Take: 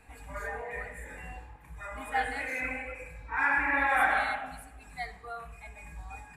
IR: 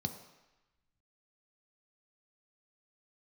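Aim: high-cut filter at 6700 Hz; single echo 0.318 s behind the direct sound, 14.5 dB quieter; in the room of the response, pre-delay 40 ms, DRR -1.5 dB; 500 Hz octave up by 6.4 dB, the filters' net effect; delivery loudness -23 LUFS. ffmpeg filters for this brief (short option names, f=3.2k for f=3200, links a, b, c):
-filter_complex "[0:a]lowpass=6.7k,equalizer=f=500:t=o:g=7.5,aecho=1:1:318:0.188,asplit=2[a][b];[1:a]atrim=start_sample=2205,adelay=40[c];[b][c]afir=irnorm=-1:irlink=0,volume=0.5dB[d];[a][d]amix=inputs=2:normalize=0,volume=1.5dB"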